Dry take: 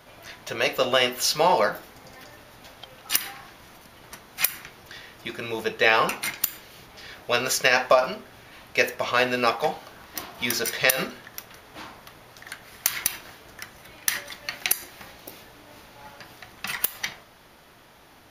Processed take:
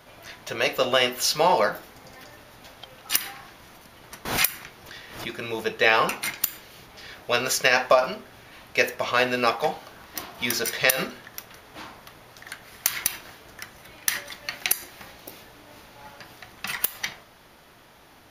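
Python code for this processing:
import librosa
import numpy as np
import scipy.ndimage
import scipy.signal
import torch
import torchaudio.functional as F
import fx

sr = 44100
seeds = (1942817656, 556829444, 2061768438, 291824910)

y = fx.pre_swell(x, sr, db_per_s=77.0, at=(4.25, 5.32))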